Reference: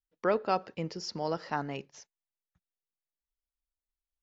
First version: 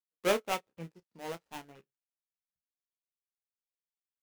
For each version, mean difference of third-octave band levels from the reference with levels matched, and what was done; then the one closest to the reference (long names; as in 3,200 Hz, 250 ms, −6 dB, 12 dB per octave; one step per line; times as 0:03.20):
12.0 dB: gap after every zero crossing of 0.27 ms
ambience of single reflections 17 ms −10 dB, 30 ms −8 dB
expander for the loud parts 2.5 to 1, over −45 dBFS
level +1.5 dB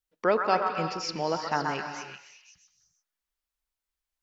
6.0 dB: low-shelf EQ 380 Hz −4.5 dB
on a send: echo through a band-pass that steps 129 ms, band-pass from 1,200 Hz, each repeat 0.7 octaves, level −1 dB
on the sum: reverb whose tail is shaped and stops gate 370 ms rising, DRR 8.5 dB
level +5 dB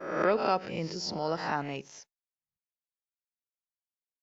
4.0 dB: peak hold with a rise ahead of every peak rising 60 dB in 0.49 s
downward expander −52 dBFS
background raised ahead of every attack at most 66 dB per second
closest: third